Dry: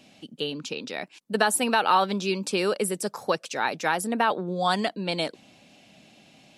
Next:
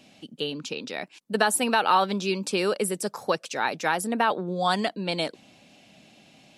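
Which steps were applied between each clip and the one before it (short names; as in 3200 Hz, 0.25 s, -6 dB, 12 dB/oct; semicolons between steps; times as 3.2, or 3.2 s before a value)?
nothing audible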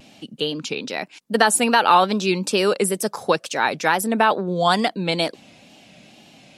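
wow and flutter 88 cents; gain +6 dB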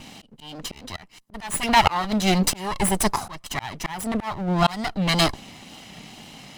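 minimum comb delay 1 ms; auto swell 0.594 s; gain +7 dB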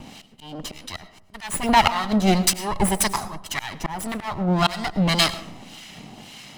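harmonic tremolo 1.8 Hz, depth 70%, crossover 1200 Hz; digital reverb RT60 0.78 s, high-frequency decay 0.3×, pre-delay 65 ms, DRR 14.5 dB; gain +4 dB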